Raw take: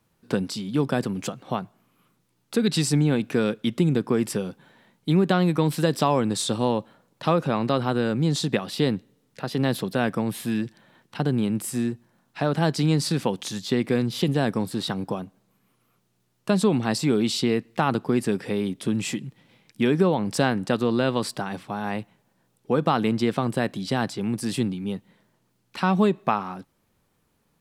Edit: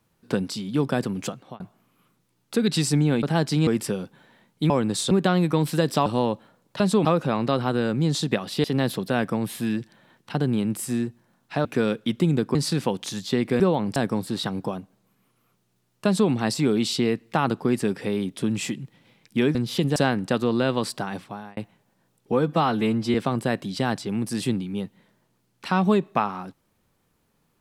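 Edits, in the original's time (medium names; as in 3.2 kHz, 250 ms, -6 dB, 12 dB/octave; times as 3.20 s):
1.33–1.60 s: fade out
3.23–4.13 s: swap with 12.50–12.94 s
6.11–6.52 s: move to 5.16 s
8.85–9.49 s: delete
13.99–14.40 s: swap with 19.99–20.35 s
16.50–16.75 s: copy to 7.26 s
21.56–21.96 s: fade out
22.71–23.26 s: stretch 1.5×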